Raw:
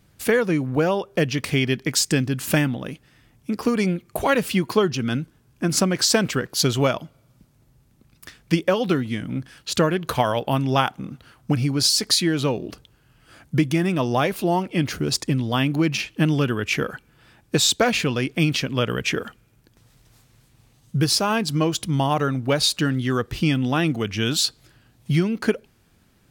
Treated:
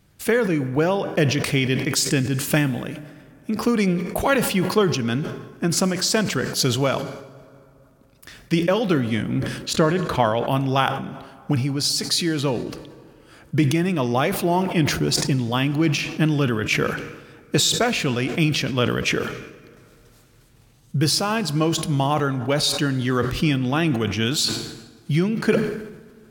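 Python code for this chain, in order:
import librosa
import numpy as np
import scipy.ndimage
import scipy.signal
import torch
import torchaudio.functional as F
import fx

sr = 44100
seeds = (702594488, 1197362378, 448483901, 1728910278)

y = fx.lowpass(x, sr, hz=3000.0, slope=6, at=(9.73, 10.45))
y = fx.rider(y, sr, range_db=4, speed_s=0.5)
y = fx.rev_plate(y, sr, seeds[0], rt60_s=2.8, hf_ratio=0.55, predelay_ms=0, drr_db=15.0)
y = fx.sustainer(y, sr, db_per_s=59.0)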